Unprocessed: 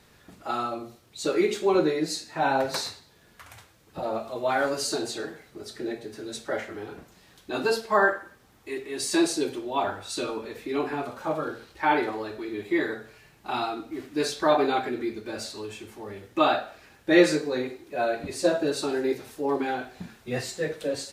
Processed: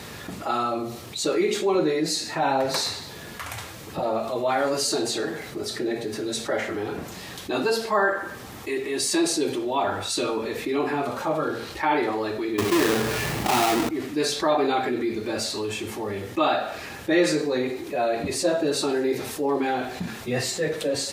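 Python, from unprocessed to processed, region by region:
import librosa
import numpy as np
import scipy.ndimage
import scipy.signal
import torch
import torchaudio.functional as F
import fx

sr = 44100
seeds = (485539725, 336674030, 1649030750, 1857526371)

y = fx.chain(x, sr, fx.halfwave_hold(),
    fx.env_flatten(amount_pct=50), at=(12.58, 13.89))
y = scipy.signal.sosfilt(scipy.signal.butter(2, 67.0, 'highpass', fs=sr, output='sos'), y)
y = fx.notch(y, sr, hz=1500.0, q=17.0)
y = fx.env_flatten(y, sr, amount_pct=50)
y = y * librosa.db_to_amplitude(-3.5)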